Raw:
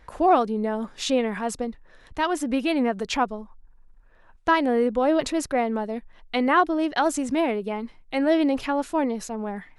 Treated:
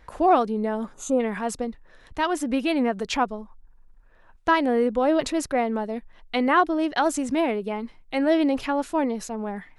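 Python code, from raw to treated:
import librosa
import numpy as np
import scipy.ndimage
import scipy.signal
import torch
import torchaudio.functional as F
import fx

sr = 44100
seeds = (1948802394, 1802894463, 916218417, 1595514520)

y = fx.spec_box(x, sr, start_s=0.94, length_s=0.26, low_hz=1500.0, high_hz=6000.0, gain_db=-20)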